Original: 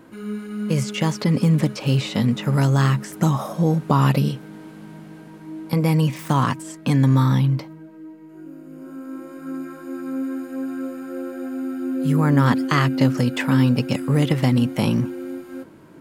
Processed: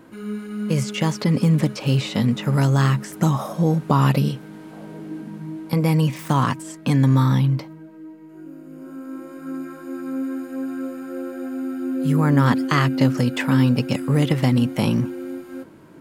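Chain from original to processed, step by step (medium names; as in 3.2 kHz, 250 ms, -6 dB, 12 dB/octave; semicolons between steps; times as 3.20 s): 4.71–5.56 s: peaking EQ 780 Hz -> 120 Hz +12.5 dB 0.84 oct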